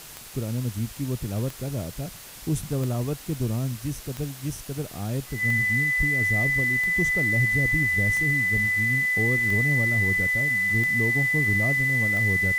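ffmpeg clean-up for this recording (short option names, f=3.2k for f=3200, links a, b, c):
-af "adeclick=t=4,bandreject=f=2k:w=30,afftdn=nr=30:nf=-41"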